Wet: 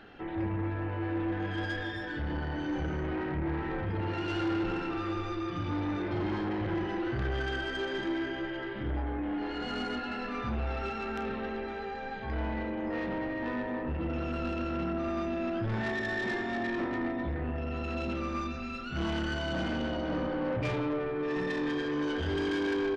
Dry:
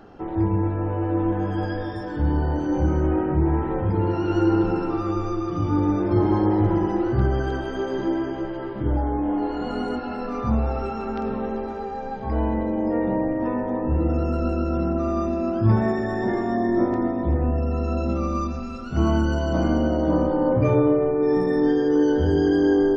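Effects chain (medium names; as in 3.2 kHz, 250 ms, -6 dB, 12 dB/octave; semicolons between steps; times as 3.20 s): high-order bell 2.5 kHz +13 dB; saturation -20.5 dBFS, distortion -11 dB; doubling 33 ms -11 dB; trim -7.5 dB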